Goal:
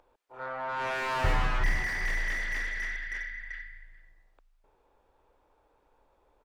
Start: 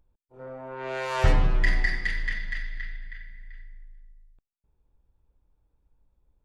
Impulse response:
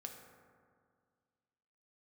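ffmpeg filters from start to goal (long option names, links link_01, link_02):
-filter_complex "[0:a]acrossover=split=410|880[link_01][link_02][link_03];[link_01]aecho=1:1:361:0.398[link_04];[link_02]acompressor=mode=upward:threshold=-42dB:ratio=2.5[link_05];[link_03]asplit=2[link_06][link_07];[link_07]highpass=frequency=720:poles=1,volume=35dB,asoftclip=type=tanh:threshold=-14dB[link_08];[link_06][link_08]amix=inputs=2:normalize=0,lowpass=frequency=1200:poles=1,volume=-6dB[link_09];[link_04][link_05][link_09]amix=inputs=3:normalize=0,volume=-7.5dB"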